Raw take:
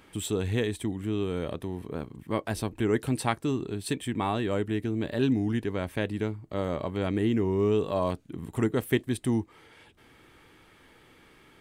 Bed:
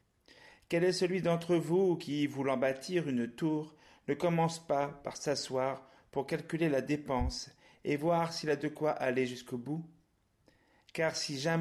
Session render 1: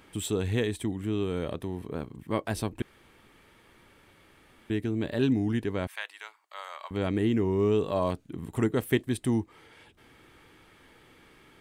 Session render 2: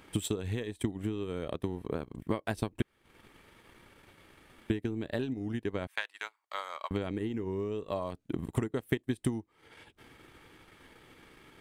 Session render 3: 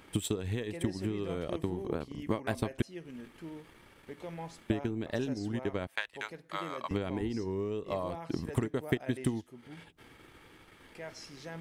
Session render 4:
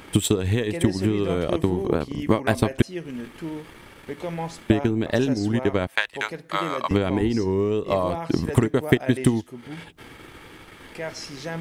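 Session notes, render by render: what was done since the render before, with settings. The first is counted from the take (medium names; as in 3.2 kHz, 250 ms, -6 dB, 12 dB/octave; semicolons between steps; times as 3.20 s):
2.82–4.70 s: room tone; 5.87–6.91 s: high-pass 940 Hz 24 dB/octave
compression 8:1, threshold -32 dBFS, peak gain reduction 13 dB; transient shaper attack +7 dB, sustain -12 dB
add bed -12.5 dB
trim +12 dB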